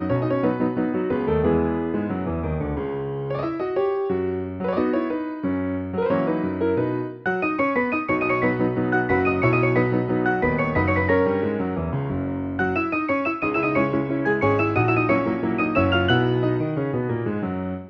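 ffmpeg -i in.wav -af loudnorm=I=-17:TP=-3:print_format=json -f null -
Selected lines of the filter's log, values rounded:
"input_i" : "-22.6",
"input_tp" : "-5.5",
"input_lra" : "3.2",
"input_thresh" : "-32.6",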